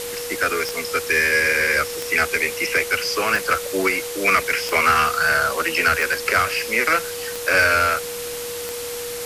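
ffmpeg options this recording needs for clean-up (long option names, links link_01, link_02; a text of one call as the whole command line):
ffmpeg -i in.wav -af "adeclick=threshold=4,bandreject=frequency=480:width=30,afwtdn=0.028" out.wav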